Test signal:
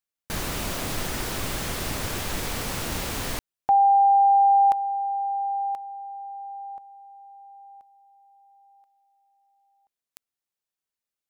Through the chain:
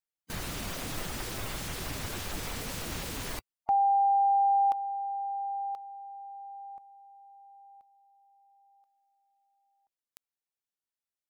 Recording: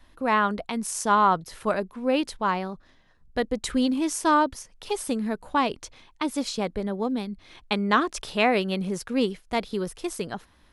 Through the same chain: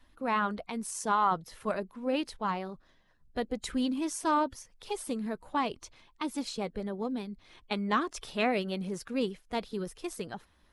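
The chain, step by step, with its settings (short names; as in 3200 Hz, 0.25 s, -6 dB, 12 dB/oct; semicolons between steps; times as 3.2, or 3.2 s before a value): bin magnitudes rounded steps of 15 dB; gain -6.5 dB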